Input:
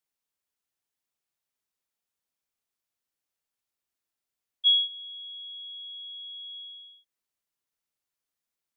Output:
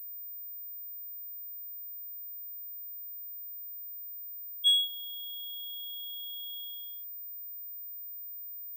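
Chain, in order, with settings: class-D stage that switches slowly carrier 15 kHz; trim -2.5 dB

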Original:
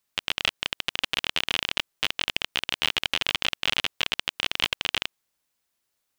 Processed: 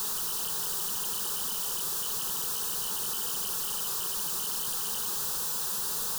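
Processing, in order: one-bit comparator; static phaser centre 430 Hz, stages 8

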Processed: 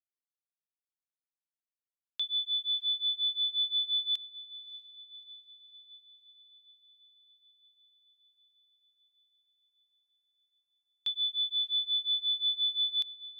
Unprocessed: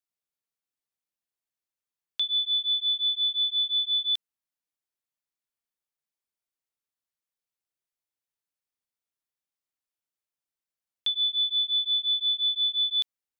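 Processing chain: bit crusher 12-bit; echo that smears into a reverb 618 ms, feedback 73%, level -13.5 dB; upward expansion 1.5:1, over -45 dBFS; trim -4.5 dB

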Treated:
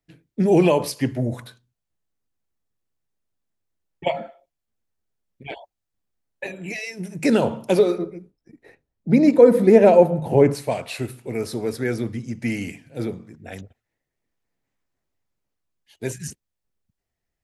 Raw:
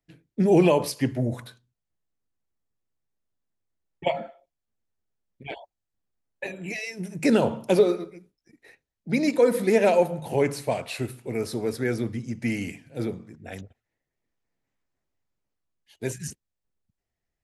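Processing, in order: 7.98–10.55 s: tilt shelf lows +7.5 dB, about 1.3 kHz; trim +2 dB

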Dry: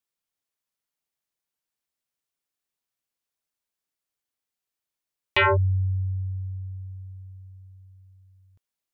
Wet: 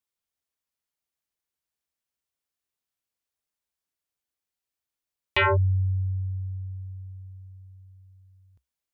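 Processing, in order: peaking EQ 66 Hz +10 dB 0.49 oct; trim -2 dB

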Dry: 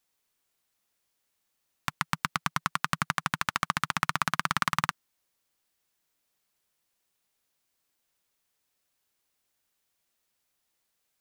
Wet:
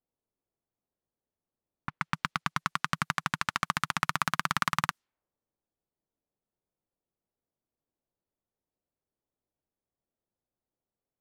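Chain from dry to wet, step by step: level-controlled noise filter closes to 580 Hz, open at -28 dBFS; trim -1 dB

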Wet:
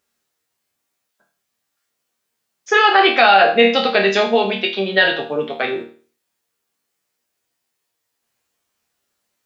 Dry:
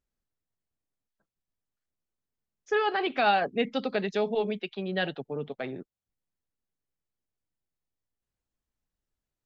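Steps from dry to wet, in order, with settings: high-pass 710 Hz 6 dB/octave; chord resonator D#2 major, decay 0.41 s; loudness maximiser +33.5 dB; trim -1 dB

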